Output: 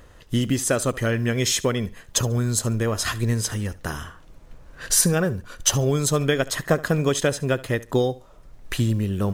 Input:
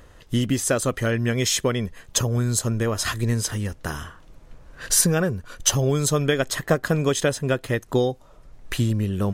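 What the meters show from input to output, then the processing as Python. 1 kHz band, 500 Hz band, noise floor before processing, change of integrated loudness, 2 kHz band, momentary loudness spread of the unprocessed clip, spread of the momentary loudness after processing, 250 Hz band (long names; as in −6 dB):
0.0 dB, 0.0 dB, −49 dBFS, 0.0 dB, 0.0 dB, 9 LU, 9 LU, 0.0 dB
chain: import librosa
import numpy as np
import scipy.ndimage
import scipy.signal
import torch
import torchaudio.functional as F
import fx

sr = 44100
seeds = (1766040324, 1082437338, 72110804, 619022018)

y = fx.quant_companded(x, sr, bits=8)
y = fx.echo_feedback(y, sr, ms=71, feedback_pct=22, wet_db=-19.5)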